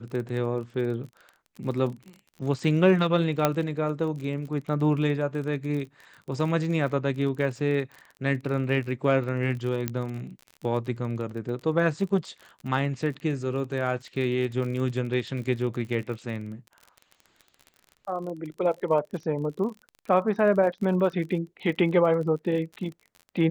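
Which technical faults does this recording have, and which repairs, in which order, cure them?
crackle 36/s -35 dBFS
3.45 pop -7 dBFS
9.88 pop -12 dBFS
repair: de-click

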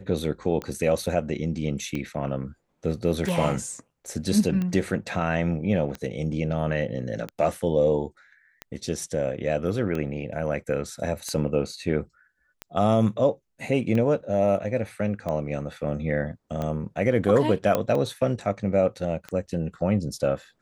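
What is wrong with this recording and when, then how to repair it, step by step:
tick 45 rpm -18 dBFS
17.75 pop -10 dBFS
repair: de-click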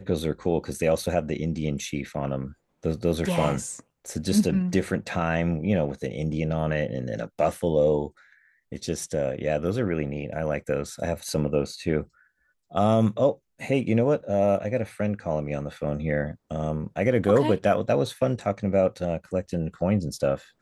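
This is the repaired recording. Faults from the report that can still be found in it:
none

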